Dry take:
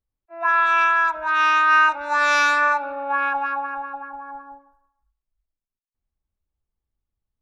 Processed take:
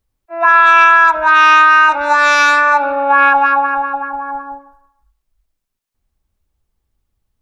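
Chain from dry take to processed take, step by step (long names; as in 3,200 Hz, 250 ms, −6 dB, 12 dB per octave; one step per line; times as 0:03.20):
boost into a limiter +14 dB
level −1 dB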